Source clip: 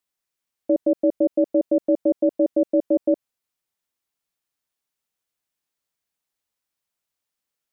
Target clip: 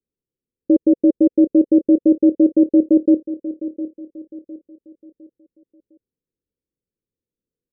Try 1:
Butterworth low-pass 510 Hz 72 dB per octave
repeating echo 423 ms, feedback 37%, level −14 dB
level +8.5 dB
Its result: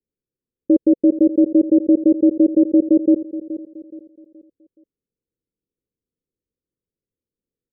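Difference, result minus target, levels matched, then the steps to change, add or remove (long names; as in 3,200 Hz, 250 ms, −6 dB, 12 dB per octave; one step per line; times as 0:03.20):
echo 284 ms early
change: repeating echo 707 ms, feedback 37%, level −14 dB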